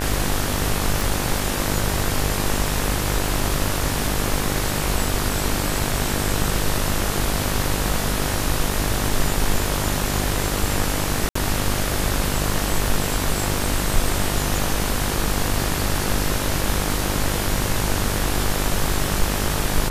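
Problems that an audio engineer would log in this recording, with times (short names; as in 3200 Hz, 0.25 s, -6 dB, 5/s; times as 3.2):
buzz 50 Hz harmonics 38 -26 dBFS
1.01 pop
11.29–11.35 gap 64 ms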